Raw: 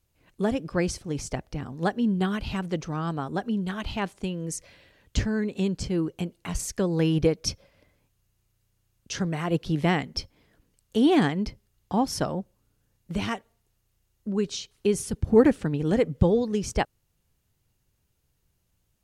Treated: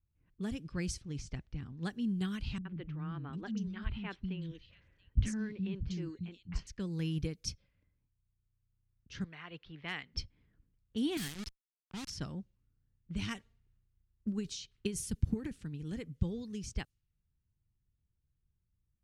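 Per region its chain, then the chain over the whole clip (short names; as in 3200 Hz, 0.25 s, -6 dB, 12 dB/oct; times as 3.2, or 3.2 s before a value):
2.58–6.67 air absorption 85 m + three bands offset in time lows, mids, highs 70/750 ms, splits 260/3300 Hz
9.24–10.13 three-band isolator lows -18 dB, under 520 Hz, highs -24 dB, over 4600 Hz + hard clip -16.5 dBFS
11.17–12.1 pre-emphasis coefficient 0.8 + companded quantiser 2-bit
13.19–15.51 compressor, threshold -19 dBFS + transient shaper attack +10 dB, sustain +6 dB
whole clip: low-pass opened by the level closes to 1300 Hz, open at -22 dBFS; passive tone stack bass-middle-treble 6-0-2; vocal rider 2 s; gain +6 dB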